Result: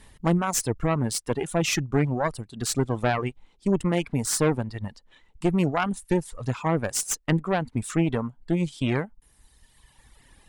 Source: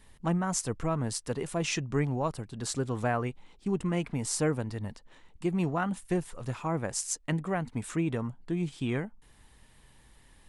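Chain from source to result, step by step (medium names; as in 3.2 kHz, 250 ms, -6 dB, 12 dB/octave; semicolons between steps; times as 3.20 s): Chebyshev shaper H 4 -9 dB, 5 -12 dB, 8 -23 dB, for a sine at -12.5 dBFS; reverb removal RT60 1.6 s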